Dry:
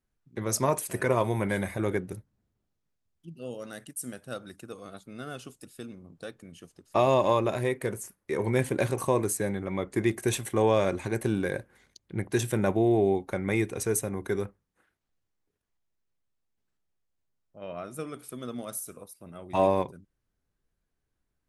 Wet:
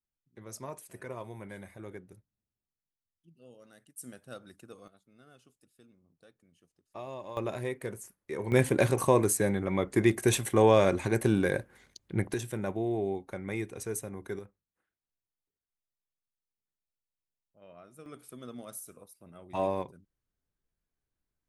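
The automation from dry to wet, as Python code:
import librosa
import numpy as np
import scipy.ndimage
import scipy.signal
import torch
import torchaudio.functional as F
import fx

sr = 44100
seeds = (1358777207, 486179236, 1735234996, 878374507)

y = fx.gain(x, sr, db=fx.steps((0.0, -16.0), (3.98, -7.5), (4.88, -19.0), (7.37, -6.5), (8.52, 2.0), (12.34, -8.0), (14.39, -14.5), (18.06, -7.0)))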